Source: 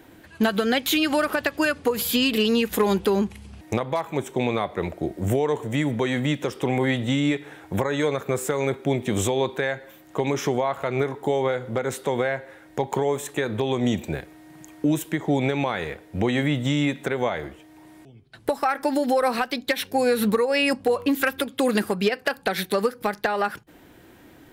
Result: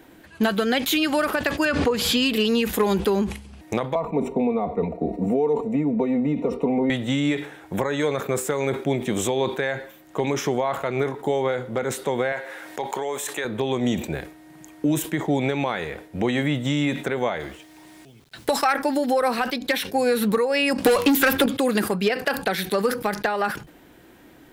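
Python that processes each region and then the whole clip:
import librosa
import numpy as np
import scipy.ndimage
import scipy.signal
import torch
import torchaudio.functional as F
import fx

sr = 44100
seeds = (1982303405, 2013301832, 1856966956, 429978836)

y = fx.chain(x, sr, fx.lowpass(hz=6100.0, slope=12),
    fx.pre_swell(db_per_s=38.0), at=(1.65, 2.17))
y = fx.chain(y, sr, fx.moving_average(points=27),
    fx.comb(ms=4.3, depth=0.86),
    fx.band_squash(depth_pct=70), at=(3.95, 6.9))
y = fx.chain(y, sr, fx.highpass(hz=810.0, slope=6),
    fx.env_flatten(amount_pct=50), at=(12.32, 13.45))
y = fx.chain(y, sr, fx.peak_eq(hz=5100.0, db=9.0, octaves=2.8),
    fx.quant_dither(seeds[0], bits=10, dither='none'), at=(17.4, 18.73))
y = fx.chain(y, sr, fx.leveller(passes=2),
    fx.band_squash(depth_pct=100), at=(20.78, 21.46))
y = fx.peak_eq(y, sr, hz=100.0, db=-9.5, octaves=0.33)
y = fx.sustainer(y, sr, db_per_s=110.0)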